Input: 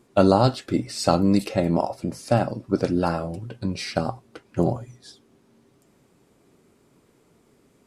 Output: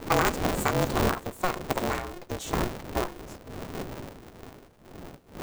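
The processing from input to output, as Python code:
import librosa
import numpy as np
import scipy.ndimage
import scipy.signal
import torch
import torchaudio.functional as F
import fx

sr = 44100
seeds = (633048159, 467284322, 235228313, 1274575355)

y = fx.speed_glide(x, sr, from_pct=167, to_pct=123)
y = fx.dmg_wind(y, sr, seeds[0], corner_hz=290.0, level_db=-29.0)
y = y * np.sign(np.sin(2.0 * np.pi * 180.0 * np.arange(len(y)) / sr))
y = y * librosa.db_to_amplitude(-6.5)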